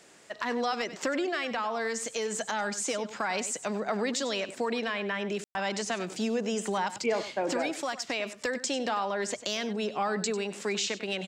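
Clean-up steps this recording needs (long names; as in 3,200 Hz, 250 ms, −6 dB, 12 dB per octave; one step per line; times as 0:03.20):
ambience match 0:05.44–0:05.55
echo removal 97 ms −13.5 dB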